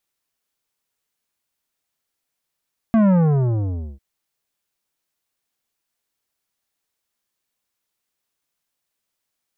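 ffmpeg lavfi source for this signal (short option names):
-f lavfi -i "aevalsrc='0.224*clip((1.05-t)/0.9,0,1)*tanh(3.98*sin(2*PI*230*1.05/log(65/230)*(exp(log(65/230)*t/1.05)-1)))/tanh(3.98)':d=1.05:s=44100"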